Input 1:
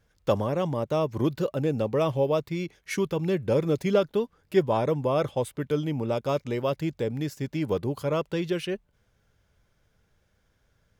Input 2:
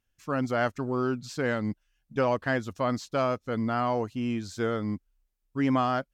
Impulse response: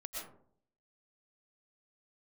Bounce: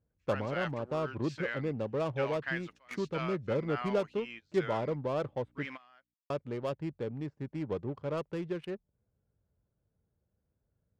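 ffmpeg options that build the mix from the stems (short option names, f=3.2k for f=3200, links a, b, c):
-filter_complex "[0:a]highpass=56,adynamicsmooth=sensitivity=3.5:basefreq=680,volume=-8dB,asplit=3[a][b][c];[a]atrim=end=5.66,asetpts=PTS-STARTPTS,afade=t=out:st=5.656:d=0.004:c=hsin[d];[b]atrim=start=5.66:end=6.3,asetpts=PTS-STARTPTS,volume=0[e];[c]atrim=start=6.3,asetpts=PTS-STARTPTS,afade=t=in:d=0.004:c=hsin[f];[d][e][f]concat=n=3:v=0:a=1,asplit=2[g][h];[1:a]aeval=exprs='val(0)+0.0126*(sin(2*PI*60*n/s)+sin(2*PI*2*60*n/s)/2+sin(2*PI*3*60*n/s)/3+sin(2*PI*4*60*n/s)/4+sin(2*PI*5*60*n/s)/5)':c=same,asoftclip=type=hard:threshold=-18.5dB,bandpass=f=2.3k:t=q:w=1.6:csg=0,volume=-1dB[i];[h]apad=whole_len=270665[j];[i][j]sidechaingate=range=-23dB:threshold=-53dB:ratio=16:detection=peak[k];[g][k]amix=inputs=2:normalize=0"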